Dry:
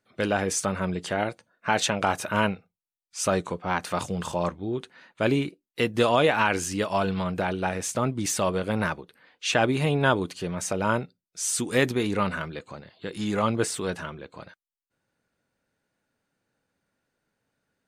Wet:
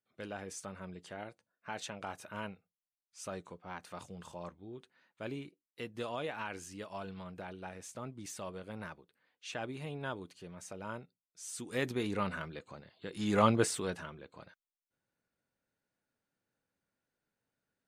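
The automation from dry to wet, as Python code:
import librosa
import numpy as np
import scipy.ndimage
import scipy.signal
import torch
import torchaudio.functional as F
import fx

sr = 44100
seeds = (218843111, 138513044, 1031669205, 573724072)

y = fx.gain(x, sr, db=fx.line((11.45, -18.0), (11.99, -9.0), (13.12, -9.0), (13.42, -1.0), (14.07, -10.0)))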